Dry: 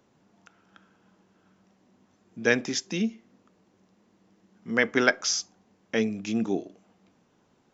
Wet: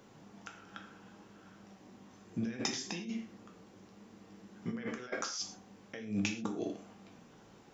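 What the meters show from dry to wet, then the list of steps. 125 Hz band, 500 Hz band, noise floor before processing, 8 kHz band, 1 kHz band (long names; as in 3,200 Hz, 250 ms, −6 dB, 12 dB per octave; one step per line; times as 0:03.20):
−5.0 dB, −14.5 dB, −66 dBFS, can't be measured, −9.5 dB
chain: compressor whose output falls as the input rises −38 dBFS, ratio −1
reverb whose tail is shaped and stops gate 150 ms falling, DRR 2.5 dB
level −3.5 dB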